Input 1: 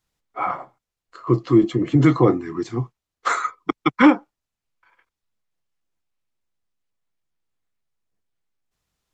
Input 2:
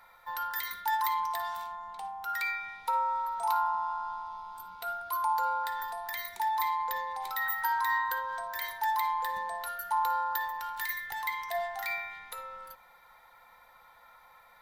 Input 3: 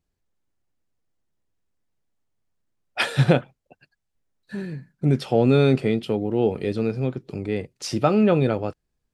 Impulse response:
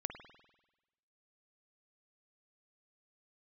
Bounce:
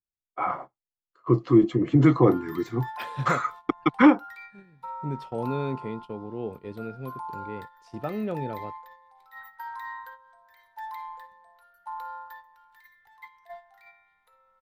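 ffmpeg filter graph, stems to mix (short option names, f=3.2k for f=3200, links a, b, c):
-filter_complex "[0:a]agate=range=-33dB:threshold=-38dB:ratio=3:detection=peak,volume=-2.5dB[a];[1:a]highshelf=f=7k:g=-3,adelay=1950,volume=-7.5dB[b];[2:a]volume=-12.5dB[c];[a][b][c]amix=inputs=3:normalize=0,agate=range=-12dB:threshold=-39dB:ratio=16:detection=peak,highshelf=f=3.4k:g=-9"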